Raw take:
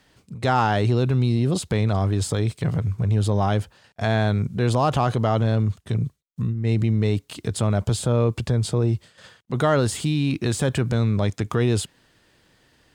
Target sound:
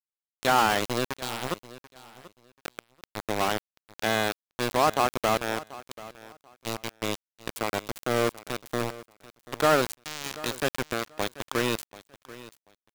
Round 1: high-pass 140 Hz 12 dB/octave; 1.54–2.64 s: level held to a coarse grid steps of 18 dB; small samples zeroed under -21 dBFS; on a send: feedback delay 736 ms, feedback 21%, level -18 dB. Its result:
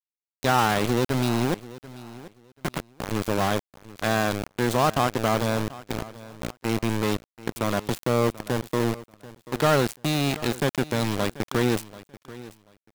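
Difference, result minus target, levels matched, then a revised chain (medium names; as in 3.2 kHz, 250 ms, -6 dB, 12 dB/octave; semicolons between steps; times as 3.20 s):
125 Hz band +8.5 dB
high-pass 300 Hz 12 dB/octave; 1.54–2.64 s: level held to a coarse grid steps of 18 dB; small samples zeroed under -21 dBFS; on a send: feedback delay 736 ms, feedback 21%, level -18 dB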